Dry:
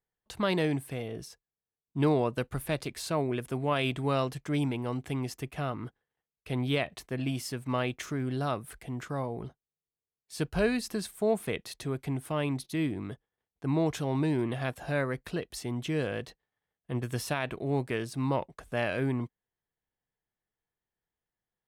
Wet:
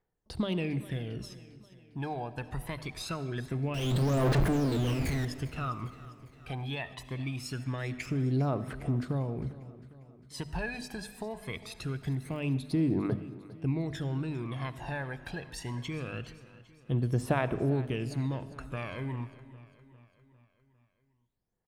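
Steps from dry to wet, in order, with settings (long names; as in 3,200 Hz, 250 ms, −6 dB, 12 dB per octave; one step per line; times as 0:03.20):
0:03.74–0:05.25: sign of each sample alone
low-pass filter 3,600 Hz 6 dB per octave
mains-hum notches 50/100/150/200/250 Hz
downward compressor 3 to 1, threshold −35 dBFS, peak gain reduction 10 dB
0:11.98–0:12.56: surface crackle 77 per second −50 dBFS
phase shifter 0.23 Hz, delay 1.3 ms, feedback 74%
repeating echo 402 ms, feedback 55%, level −18 dB
convolution reverb RT60 1.4 s, pre-delay 30 ms, DRR 14.5 dB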